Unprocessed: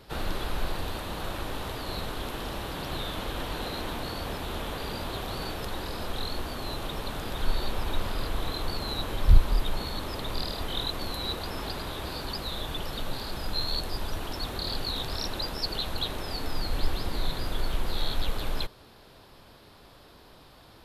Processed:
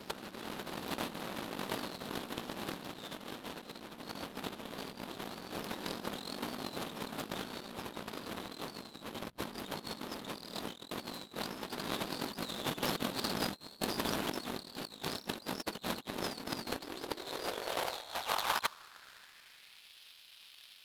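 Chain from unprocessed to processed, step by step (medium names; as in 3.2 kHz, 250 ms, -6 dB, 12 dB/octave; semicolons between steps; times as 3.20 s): high-pass sweep 210 Hz -> 2.8 kHz, 16.47–19.93 s; compressor with a negative ratio -39 dBFS, ratio -0.5; power-law waveshaper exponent 2; trim +11.5 dB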